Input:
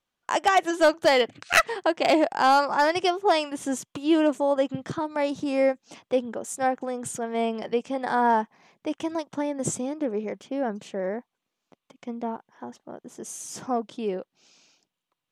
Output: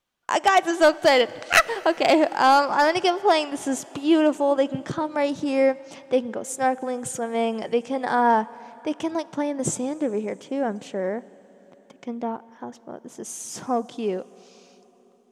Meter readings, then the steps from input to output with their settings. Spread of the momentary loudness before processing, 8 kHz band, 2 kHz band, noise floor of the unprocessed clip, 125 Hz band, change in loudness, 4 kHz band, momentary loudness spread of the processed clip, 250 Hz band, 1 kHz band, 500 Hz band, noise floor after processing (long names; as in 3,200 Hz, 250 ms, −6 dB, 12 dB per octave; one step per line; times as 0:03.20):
16 LU, +2.5 dB, +2.5 dB, −85 dBFS, +2.5 dB, +2.5 dB, +2.5 dB, 16 LU, +2.5 dB, +2.5 dB, +2.5 dB, −56 dBFS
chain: dense smooth reverb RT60 4.4 s, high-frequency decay 0.9×, DRR 19.5 dB
level +2.5 dB